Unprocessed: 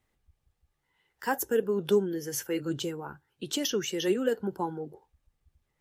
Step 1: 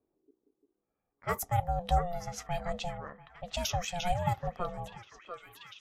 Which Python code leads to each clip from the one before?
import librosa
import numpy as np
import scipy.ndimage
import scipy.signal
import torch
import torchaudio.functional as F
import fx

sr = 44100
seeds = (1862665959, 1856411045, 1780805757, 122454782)

y = fx.env_lowpass(x, sr, base_hz=580.0, full_db=-26.0)
y = fx.echo_stepped(y, sr, ms=690, hz=1000.0, octaves=0.7, feedback_pct=70, wet_db=-6)
y = y * np.sin(2.0 * np.pi * 350.0 * np.arange(len(y)) / sr)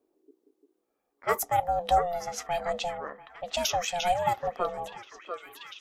y = fx.low_shelf_res(x, sr, hz=210.0, db=-13.0, q=1.5)
y = F.gain(torch.from_numpy(y), 5.5).numpy()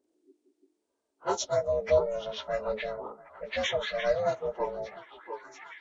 y = fx.partial_stretch(x, sr, pct=82)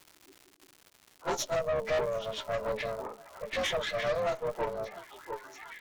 y = fx.dmg_crackle(x, sr, seeds[0], per_s=300.0, level_db=-42.0)
y = fx.tube_stage(y, sr, drive_db=29.0, bias=0.65)
y = F.gain(torch.from_numpy(y), 3.5).numpy()